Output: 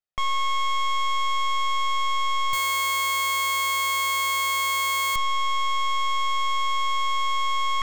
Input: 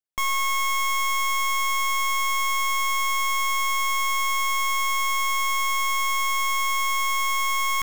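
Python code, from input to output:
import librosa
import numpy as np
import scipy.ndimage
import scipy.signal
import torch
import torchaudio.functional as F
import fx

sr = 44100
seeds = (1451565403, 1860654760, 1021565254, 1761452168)

y = scipy.signal.sosfilt(scipy.signal.butter(2, 4400.0, 'lowpass', fs=sr, output='sos'), x)
y = y + 0.51 * np.pad(y, (int(1.6 * sr / 1000.0), 0))[:len(y)]
y = fx.schmitt(y, sr, flips_db=-44.0, at=(2.53, 5.16))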